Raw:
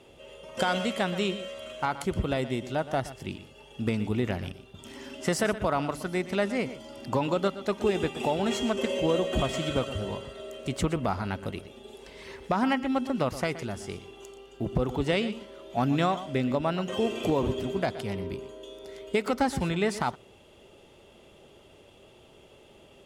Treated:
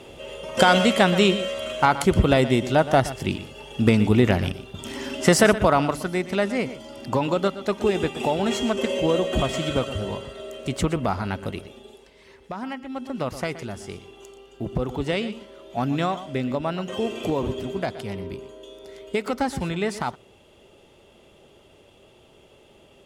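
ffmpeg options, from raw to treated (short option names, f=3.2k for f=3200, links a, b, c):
-af "volume=18.5dB,afade=t=out:st=5.44:d=0.72:silence=0.473151,afade=t=out:st=11.68:d=0.42:silence=0.281838,afade=t=in:st=12.89:d=0.45:silence=0.398107"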